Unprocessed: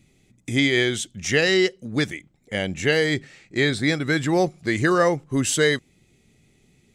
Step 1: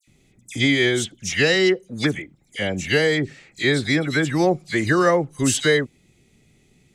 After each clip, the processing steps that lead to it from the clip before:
all-pass dispersion lows, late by 76 ms, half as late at 2,400 Hz
level +1.5 dB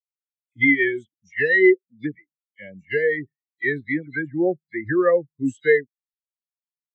dynamic equaliser 2,000 Hz, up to +7 dB, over −36 dBFS, Q 2
every bin expanded away from the loudest bin 2.5 to 1
level −2.5 dB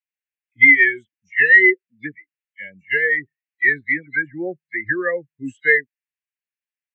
flat-topped bell 2,100 Hz +14.5 dB 1.1 octaves
level −6 dB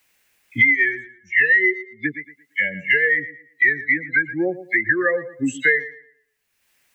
tape delay 115 ms, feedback 21%, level −16 dB, low-pass 3,300 Hz
multiband upward and downward compressor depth 100%

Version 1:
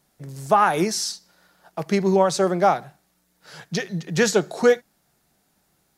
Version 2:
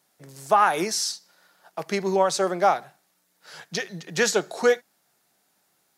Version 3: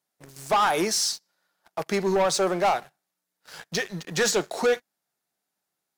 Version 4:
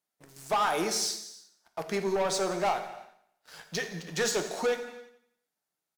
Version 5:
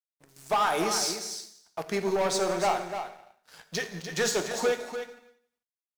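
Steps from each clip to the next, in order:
high-pass filter 510 Hz 6 dB per octave
leveller curve on the samples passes 3; level −8.5 dB
repeating echo 87 ms, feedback 57%, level −18 dB; reverb whose tail is shaped and stops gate 370 ms falling, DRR 7 dB; level −6 dB
mu-law and A-law mismatch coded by A; single-tap delay 295 ms −8.5 dB; level +2.5 dB

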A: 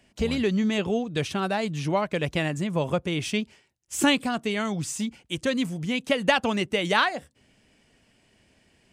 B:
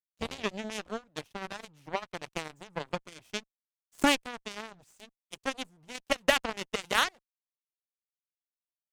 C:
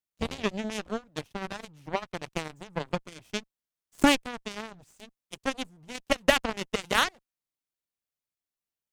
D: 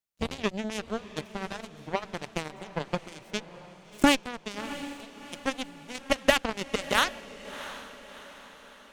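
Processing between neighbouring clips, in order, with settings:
dead-zone distortion −37 dBFS; harmonic generator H 4 −28 dB, 7 −16 dB, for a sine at −7.5 dBFS; level −2 dB
low-shelf EQ 330 Hz +6.5 dB; level +1.5 dB
feedback delay with all-pass diffusion 684 ms, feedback 48%, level −14 dB

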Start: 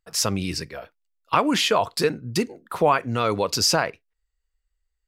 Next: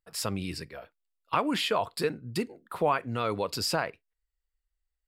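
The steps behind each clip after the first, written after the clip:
parametric band 6,100 Hz −12.5 dB 0.28 octaves
level −7 dB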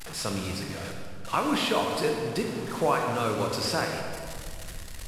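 linear delta modulator 64 kbit/s, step −34 dBFS
on a send at −2 dB: convolution reverb RT60 2.1 s, pre-delay 22 ms

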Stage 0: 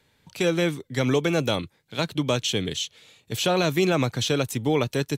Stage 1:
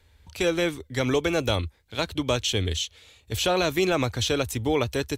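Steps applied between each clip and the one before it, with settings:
low shelf with overshoot 100 Hz +13.5 dB, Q 3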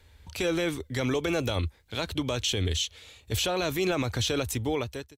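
fade-out on the ending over 0.83 s
brickwall limiter −21 dBFS, peak gain reduction 11 dB
level +2.5 dB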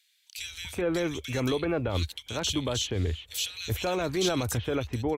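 multiband delay without the direct sound highs, lows 380 ms, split 2,300 Hz

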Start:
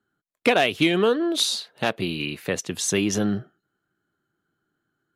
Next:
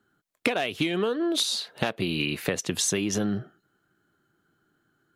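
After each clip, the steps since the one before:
downward compressor 12 to 1, threshold −29 dBFS, peak gain reduction 16 dB
level +6.5 dB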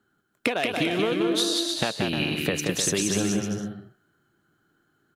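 bouncing-ball delay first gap 180 ms, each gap 0.7×, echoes 5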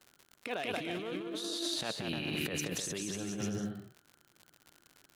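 surface crackle 90 per second −37 dBFS
compressor whose output falls as the input rises −29 dBFS, ratio −1
level −8 dB

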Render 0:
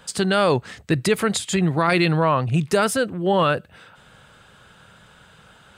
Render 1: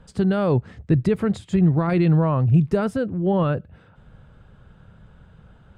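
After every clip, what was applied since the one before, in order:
spectral tilt −4.5 dB per octave
level −7.5 dB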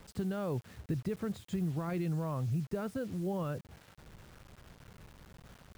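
downward compressor 2.5 to 1, threshold −28 dBFS, peak gain reduction 10.5 dB
bit reduction 8 bits
level −7.5 dB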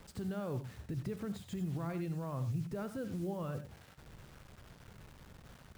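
brickwall limiter −30.5 dBFS, peak gain reduction 6.5 dB
reverb whose tail is shaped and stops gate 120 ms rising, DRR 9.5 dB
level −1 dB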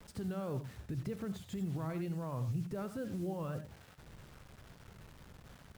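pitch vibrato 2 Hz 81 cents

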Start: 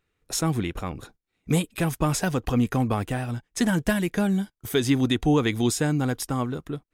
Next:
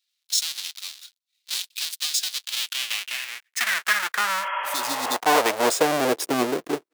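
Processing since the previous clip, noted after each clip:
each half-wave held at its own peak
healed spectral selection 0:04.45–0:05.13, 370–3,400 Hz both
high-pass filter sweep 3,900 Hz → 370 Hz, 0:02.38–0:06.34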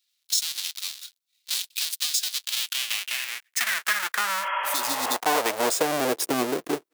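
high-shelf EQ 7,600 Hz +5.5 dB
downward compressor 2 to 1, threshold −25 dBFS, peak gain reduction 7 dB
level +1.5 dB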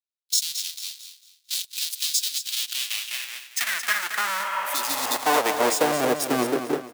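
repeating echo 224 ms, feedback 46%, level −7.5 dB
multiband upward and downward expander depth 70%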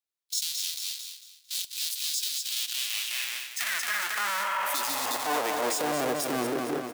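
downward compressor, threshold −26 dBFS, peak gain reduction 10 dB
transient designer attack −7 dB, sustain +5 dB
convolution reverb, pre-delay 3 ms, DRR 17.5 dB
level +1.5 dB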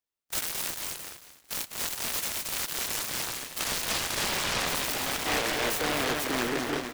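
short delay modulated by noise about 1,200 Hz, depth 0.28 ms

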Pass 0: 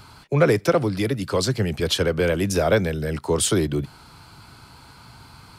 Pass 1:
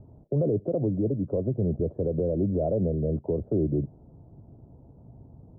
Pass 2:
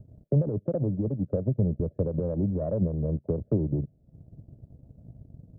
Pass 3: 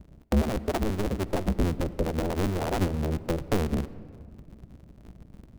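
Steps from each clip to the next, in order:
elliptic low-pass filter 630 Hz, stop band 80 dB; brickwall limiter −17.5 dBFS, peak gain reduction 11 dB
drawn EQ curve 190 Hz 0 dB, 380 Hz −8 dB, 610 Hz −2 dB, 1,000 Hz −24 dB, 1,700 Hz +3 dB; transient designer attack +7 dB, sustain −10 dB
sub-harmonics by changed cycles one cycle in 2, inverted; on a send at −16 dB: convolution reverb RT60 2.2 s, pre-delay 47 ms

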